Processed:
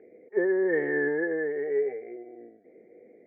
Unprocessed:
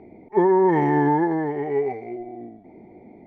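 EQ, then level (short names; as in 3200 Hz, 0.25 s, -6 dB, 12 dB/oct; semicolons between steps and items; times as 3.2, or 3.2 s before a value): double band-pass 920 Hz, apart 1.8 oct; air absorption 130 m; +5.0 dB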